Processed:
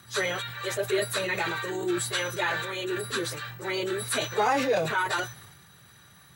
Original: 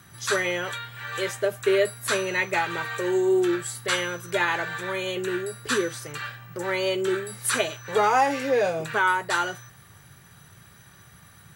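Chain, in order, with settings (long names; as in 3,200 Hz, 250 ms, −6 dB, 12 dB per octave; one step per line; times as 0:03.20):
time stretch by phase vocoder 0.55×
parametric band 3,900 Hz +7 dB 0.22 octaves
transient designer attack −1 dB, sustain +7 dB
low-shelf EQ 120 Hz −4.5 dB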